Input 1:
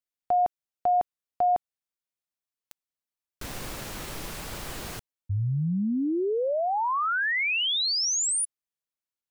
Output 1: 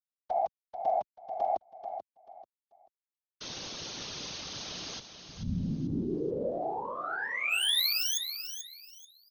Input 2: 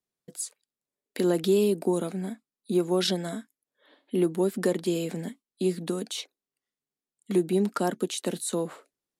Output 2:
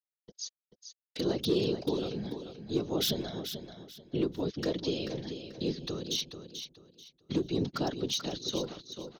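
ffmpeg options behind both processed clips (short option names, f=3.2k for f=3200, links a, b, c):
-filter_complex "[0:a]afftfilt=real='re*between(b*sr/4096,110,6600)':imag='im*between(b*sr/4096,110,6600)':win_size=4096:overlap=0.75,agate=range=-42dB:threshold=-55dB:ratio=16:release=23:detection=peak,acrossover=split=400|550|2400[a][b][c][d];[d]aeval=exprs='0.0355*(abs(mod(val(0)/0.0355+3,4)-2)-1)':c=same[e];[a][b][c][e]amix=inputs=4:normalize=0,adynamicequalizer=threshold=0.00891:dfrequency=990:dqfactor=2:tfrequency=990:tqfactor=2:attack=5:release=100:ratio=0.417:range=3:mode=cutabove:tftype=bell,acontrast=79,asoftclip=type=hard:threshold=-9.5dB,afftfilt=real='hypot(re,im)*cos(2*PI*random(0))':imag='hypot(re,im)*sin(2*PI*random(1))':win_size=512:overlap=0.75,highshelf=f=2.7k:t=q:w=1.5:g=8.5,aecho=1:1:437|874|1311:0.355|0.0923|0.024,volume=-7dB"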